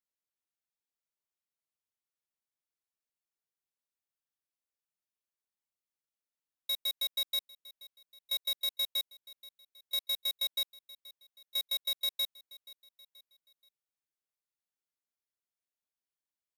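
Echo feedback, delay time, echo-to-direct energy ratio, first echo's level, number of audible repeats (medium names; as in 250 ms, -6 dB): 49%, 479 ms, -21.0 dB, -22.0 dB, 3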